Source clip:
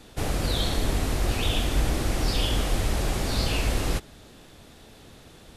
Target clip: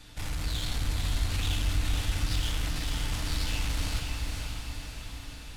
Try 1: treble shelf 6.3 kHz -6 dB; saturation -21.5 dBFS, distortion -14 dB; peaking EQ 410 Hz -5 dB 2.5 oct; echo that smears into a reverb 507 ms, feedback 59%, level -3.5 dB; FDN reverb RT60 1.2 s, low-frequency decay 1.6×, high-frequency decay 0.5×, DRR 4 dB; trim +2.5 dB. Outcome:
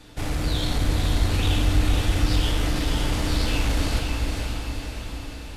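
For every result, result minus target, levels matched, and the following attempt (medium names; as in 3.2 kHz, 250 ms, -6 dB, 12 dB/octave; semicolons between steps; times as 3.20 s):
500 Hz band +6.5 dB; saturation: distortion -7 dB
treble shelf 6.3 kHz -6 dB; saturation -21.5 dBFS, distortion -14 dB; peaking EQ 410 Hz -15.5 dB 2.5 oct; echo that smears into a reverb 507 ms, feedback 59%, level -3.5 dB; FDN reverb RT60 1.2 s, low-frequency decay 1.6×, high-frequency decay 0.5×, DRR 4 dB; trim +2.5 dB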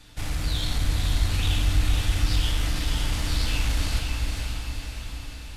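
saturation: distortion -7 dB
treble shelf 6.3 kHz -6 dB; saturation -30.5 dBFS, distortion -7 dB; peaking EQ 410 Hz -15.5 dB 2.5 oct; echo that smears into a reverb 507 ms, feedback 59%, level -3.5 dB; FDN reverb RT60 1.2 s, low-frequency decay 1.6×, high-frequency decay 0.5×, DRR 4 dB; trim +2.5 dB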